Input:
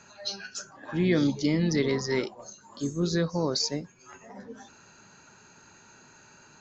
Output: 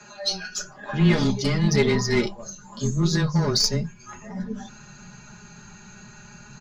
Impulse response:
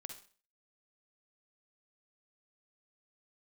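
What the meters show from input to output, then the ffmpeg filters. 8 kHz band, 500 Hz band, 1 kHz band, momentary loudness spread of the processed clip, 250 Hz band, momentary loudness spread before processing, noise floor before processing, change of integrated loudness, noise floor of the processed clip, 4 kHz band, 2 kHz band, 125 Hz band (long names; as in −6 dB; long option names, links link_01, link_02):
can't be measured, +3.5 dB, +6.5 dB, 17 LU, +3.5 dB, 21 LU, −56 dBFS, +5.0 dB, −47 dBFS, +7.0 dB, +6.5 dB, +8.5 dB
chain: -filter_complex "[0:a]aeval=exprs='0.251*(cos(1*acos(clip(val(0)/0.251,-1,1)))-cos(1*PI/2))+0.0891*(cos(2*acos(clip(val(0)/0.251,-1,1)))-cos(2*PI/2))+0.0112*(cos(8*acos(clip(val(0)/0.251,-1,1)))-cos(8*PI/2))':channel_layout=same,asubboost=boost=8:cutoff=150,aecho=1:1:4.8:0.86,acrossover=split=160[link_01][link_02];[link_01]acompressor=threshold=-33dB:ratio=6[link_03];[link_03][link_02]amix=inputs=2:normalize=0,afreqshift=-14,flanger=delay=8.7:depth=1.5:regen=-53:speed=0.42:shape=sinusoidal,volume=8.5dB"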